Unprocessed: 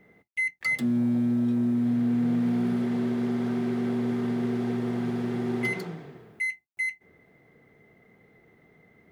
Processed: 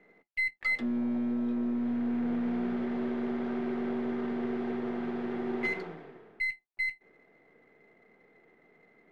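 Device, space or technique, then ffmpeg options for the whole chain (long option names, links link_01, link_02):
crystal radio: -af "highpass=280,lowpass=2700,aeval=exprs='if(lt(val(0),0),0.708*val(0),val(0))':channel_layout=same"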